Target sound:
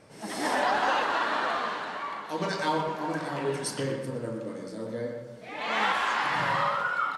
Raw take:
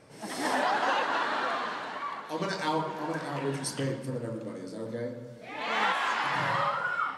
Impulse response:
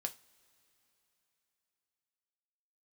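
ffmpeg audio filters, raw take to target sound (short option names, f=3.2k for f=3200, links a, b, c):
-filter_complex "[0:a]asplit=2[a][b];[b]adelay=120,highpass=300,lowpass=3.4k,asoftclip=type=hard:threshold=-25.5dB,volume=-7dB[c];[a][c]amix=inputs=2:normalize=0,asplit=2[d][e];[1:a]atrim=start_sample=2205,asetrate=23814,aresample=44100[f];[e][f]afir=irnorm=-1:irlink=0,volume=-5dB[g];[d][g]amix=inputs=2:normalize=0,volume=-3.5dB"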